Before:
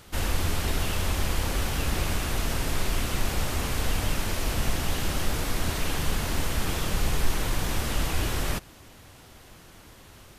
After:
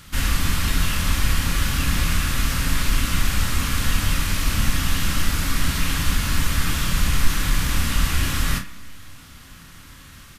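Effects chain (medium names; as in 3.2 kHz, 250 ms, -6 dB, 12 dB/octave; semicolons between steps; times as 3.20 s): high-order bell 530 Hz -11 dB; early reflections 30 ms -7.5 dB, 53 ms -14.5 dB; on a send at -8 dB: reverberation RT60 1.1 s, pre-delay 3 ms; on the sum: trim +5.5 dB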